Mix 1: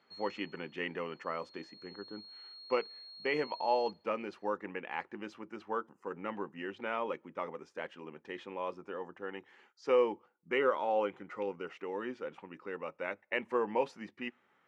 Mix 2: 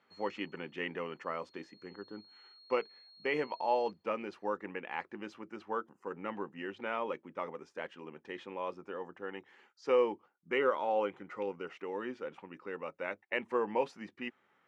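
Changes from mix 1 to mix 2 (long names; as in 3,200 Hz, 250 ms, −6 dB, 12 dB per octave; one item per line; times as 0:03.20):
background −7.5 dB
reverb: off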